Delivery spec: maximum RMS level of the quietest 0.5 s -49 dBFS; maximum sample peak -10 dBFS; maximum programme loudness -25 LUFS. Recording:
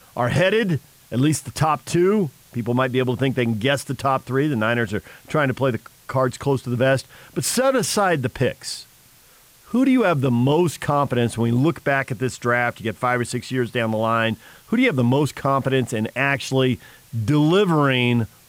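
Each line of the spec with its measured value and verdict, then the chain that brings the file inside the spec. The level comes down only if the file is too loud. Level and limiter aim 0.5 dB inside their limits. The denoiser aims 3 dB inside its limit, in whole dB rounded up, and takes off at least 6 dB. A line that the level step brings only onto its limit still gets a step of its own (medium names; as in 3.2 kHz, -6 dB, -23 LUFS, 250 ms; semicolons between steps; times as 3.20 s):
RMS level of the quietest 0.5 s -52 dBFS: pass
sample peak -6.5 dBFS: fail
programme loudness -21.0 LUFS: fail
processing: trim -4.5 dB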